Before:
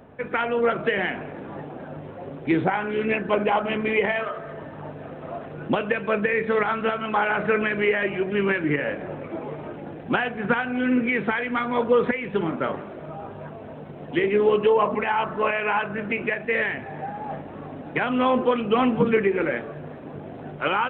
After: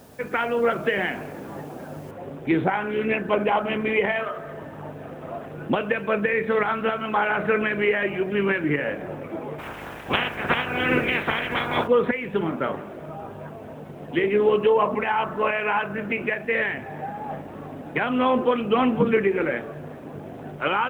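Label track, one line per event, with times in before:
2.110000	2.110000	noise floor step -57 dB -68 dB
9.580000	11.860000	spectral limiter ceiling under each frame's peak by 22 dB

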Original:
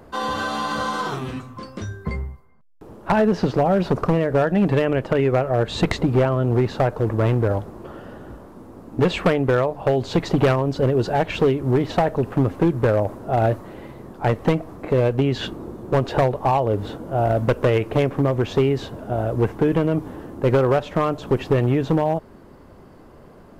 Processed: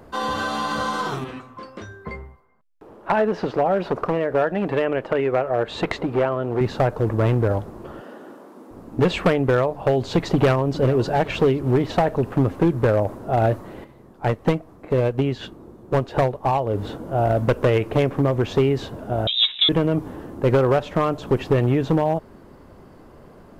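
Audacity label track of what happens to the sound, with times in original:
1.240000	6.610000	tone controls bass -11 dB, treble -9 dB
8.010000	8.710000	HPF 230 Hz 24 dB/oct
10.300000	10.800000	echo throw 0.41 s, feedback 50%, level -15 dB
13.840000	16.750000	upward expander, over -32 dBFS
19.270000	19.690000	inverted band carrier 3800 Hz

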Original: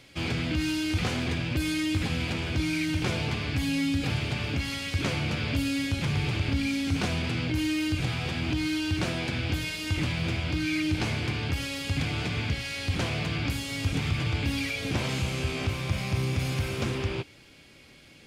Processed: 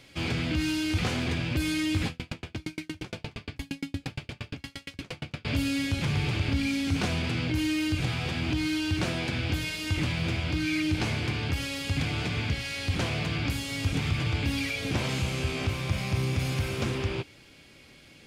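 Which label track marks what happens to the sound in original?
2.080000	5.450000	dB-ramp tremolo decaying 8.6 Hz, depth 40 dB

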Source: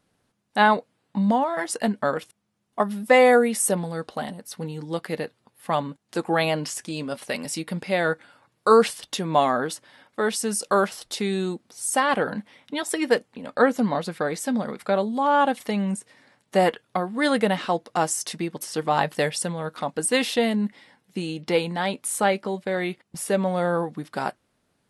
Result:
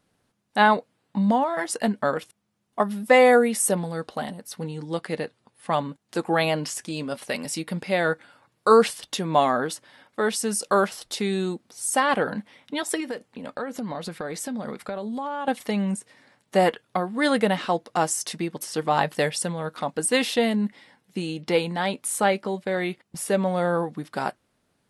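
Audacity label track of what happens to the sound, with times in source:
4.610000	5.880000	brick-wall FIR low-pass 11000 Hz
13.000000	15.480000	compressor 8:1, threshold -27 dBFS

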